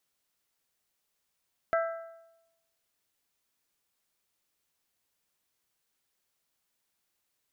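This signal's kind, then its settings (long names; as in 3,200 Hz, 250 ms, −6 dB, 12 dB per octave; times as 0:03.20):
struck metal bell, lowest mode 663 Hz, modes 4, decay 0.94 s, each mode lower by 5 dB, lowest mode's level −23 dB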